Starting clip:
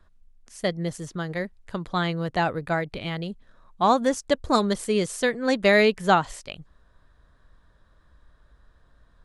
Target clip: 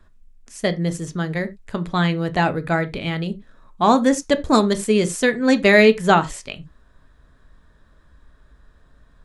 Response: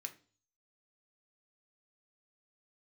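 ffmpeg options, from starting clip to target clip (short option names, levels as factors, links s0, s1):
-filter_complex "[0:a]lowshelf=f=390:g=8,asplit=2[s0][s1];[1:a]atrim=start_sample=2205,atrim=end_sample=4410[s2];[s1][s2]afir=irnorm=-1:irlink=0,volume=2[s3];[s0][s3]amix=inputs=2:normalize=0,volume=0.75"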